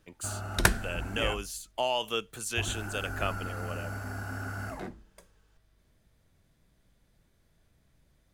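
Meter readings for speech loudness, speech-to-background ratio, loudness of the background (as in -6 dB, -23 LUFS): -34.0 LUFS, 1.0 dB, -35.0 LUFS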